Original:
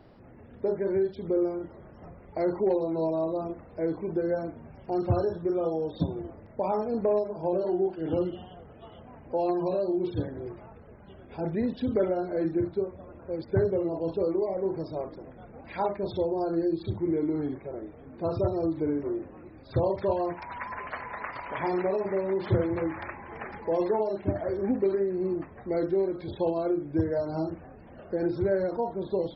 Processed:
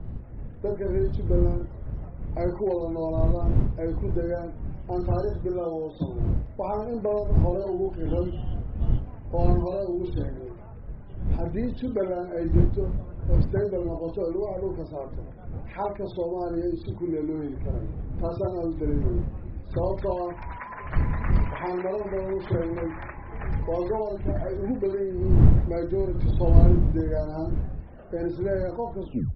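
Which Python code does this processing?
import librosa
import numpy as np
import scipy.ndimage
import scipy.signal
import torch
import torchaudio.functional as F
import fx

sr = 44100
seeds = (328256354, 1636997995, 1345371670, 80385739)

y = fx.tape_stop_end(x, sr, length_s=0.31)
y = fx.dmg_wind(y, sr, seeds[0], corner_hz=86.0, level_db=-25.0)
y = fx.env_lowpass(y, sr, base_hz=1800.0, full_db=-17.5)
y = F.gain(torch.from_numpy(y), -1.0).numpy()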